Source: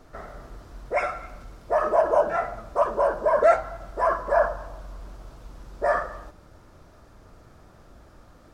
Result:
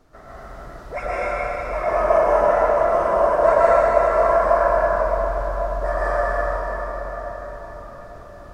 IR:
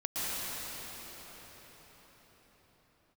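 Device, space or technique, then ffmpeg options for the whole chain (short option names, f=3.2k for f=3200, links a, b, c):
cathedral: -filter_complex "[1:a]atrim=start_sample=2205[a];[0:a][a]afir=irnorm=-1:irlink=0,volume=-2.5dB"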